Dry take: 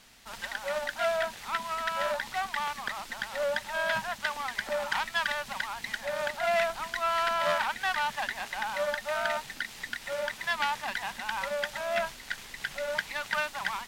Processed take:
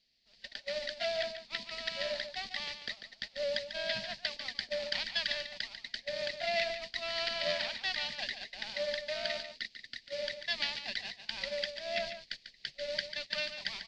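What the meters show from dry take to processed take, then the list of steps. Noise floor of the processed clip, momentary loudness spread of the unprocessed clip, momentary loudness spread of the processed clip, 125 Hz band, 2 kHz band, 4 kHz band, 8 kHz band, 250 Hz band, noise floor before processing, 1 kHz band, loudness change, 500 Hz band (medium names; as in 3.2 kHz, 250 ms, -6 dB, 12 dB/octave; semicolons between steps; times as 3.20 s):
-64 dBFS, 8 LU, 9 LU, -5.5 dB, -7.5 dB, +2.5 dB, -9.5 dB, -5.5 dB, -47 dBFS, -15.0 dB, -4.5 dB, -5.0 dB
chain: gate -34 dBFS, range -19 dB; four-pole ladder low-pass 5 kHz, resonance 70%; high-order bell 1.1 kHz -16 dB 1.1 oct; on a send: delay 144 ms -9.5 dB; on the sum: trim +7 dB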